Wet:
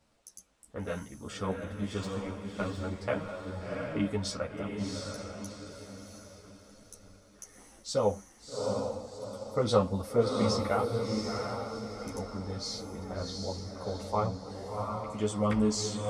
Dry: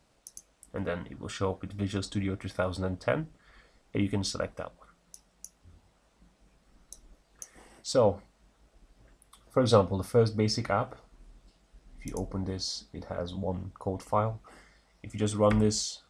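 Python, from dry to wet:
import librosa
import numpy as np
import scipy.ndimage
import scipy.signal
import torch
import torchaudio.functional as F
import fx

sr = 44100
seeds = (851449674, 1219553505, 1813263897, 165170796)

y = fx.power_curve(x, sr, exponent=1.4, at=(2.03, 2.78))
y = fx.echo_diffused(y, sr, ms=719, feedback_pct=42, wet_db=-3.0)
y = fx.ensemble(y, sr)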